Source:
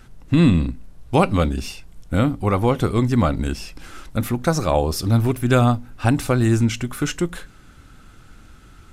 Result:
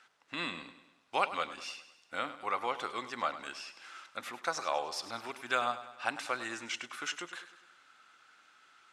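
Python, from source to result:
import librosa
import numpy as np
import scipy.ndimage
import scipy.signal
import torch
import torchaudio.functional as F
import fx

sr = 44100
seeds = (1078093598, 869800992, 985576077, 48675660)

p1 = scipy.signal.sosfilt(scipy.signal.butter(2, 1000.0, 'highpass', fs=sr, output='sos'), x)
p2 = fx.air_absorb(p1, sr, metres=82.0)
p3 = p2 + fx.echo_feedback(p2, sr, ms=101, feedback_pct=52, wet_db=-13.5, dry=0)
y = p3 * 10.0 ** (-5.5 / 20.0)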